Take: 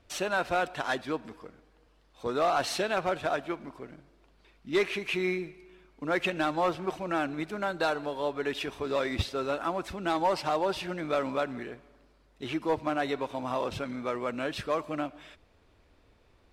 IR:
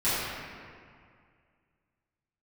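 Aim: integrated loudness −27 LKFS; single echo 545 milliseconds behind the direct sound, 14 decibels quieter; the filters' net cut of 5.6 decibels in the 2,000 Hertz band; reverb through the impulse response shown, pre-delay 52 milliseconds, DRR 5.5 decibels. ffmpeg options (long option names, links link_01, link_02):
-filter_complex "[0:a]equalizer=frequency=2000:width_type=o:gain=-8,aecho=1:1:545:0.2,asplit=2[link_01][link_02];[1:a]atrim=start_sample=2205,adelay=52[link_03];[link_02][link_03]afir=irnorm=-1:irlink=0,volume=-19dB[link_04];[link_01][link_04]amix=inputs=2:normalize=0,volume=4.5dB"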